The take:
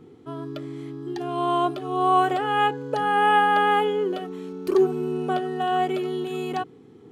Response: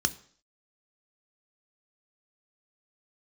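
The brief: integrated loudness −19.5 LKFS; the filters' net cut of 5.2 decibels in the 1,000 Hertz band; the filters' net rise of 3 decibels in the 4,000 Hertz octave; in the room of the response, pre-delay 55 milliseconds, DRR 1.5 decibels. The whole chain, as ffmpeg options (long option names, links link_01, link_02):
-filter_complex "[0:a]equalizer=frequency=1000:width_type=o:gain=-7.5,equalizer=frequency=4000:width_type=o:gain=5.5,asplit=2[link_01][link_02];[1:a]atrim=start_sample=2205,adelay=55[link_03];[link_02][link_03]afir=irnorm=-1:irlink=0,volume=-8.5dB[link_04];[link_01][link_04]amix=inputs=2:normalize=0,volume=3dB"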